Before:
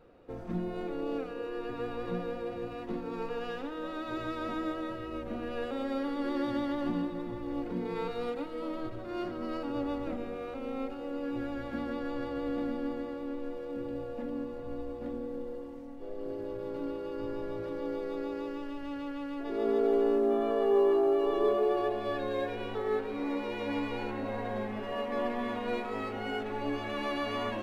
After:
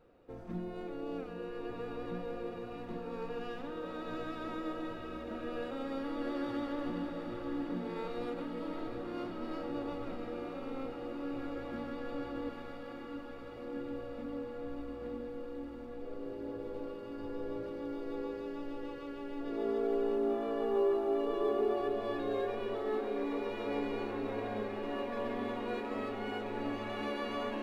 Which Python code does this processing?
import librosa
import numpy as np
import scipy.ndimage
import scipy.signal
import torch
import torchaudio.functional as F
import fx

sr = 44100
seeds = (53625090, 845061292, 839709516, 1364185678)

y = fx.highpass(x, sr, hz=870.0, slope=24, at=(12.49, 13.57))
y = fx.echo_diffused(y, sr, ms=746, feedback_pct=79, wet_db=-7.5)
y = y * librosa.db_to_amplitude(-5.5)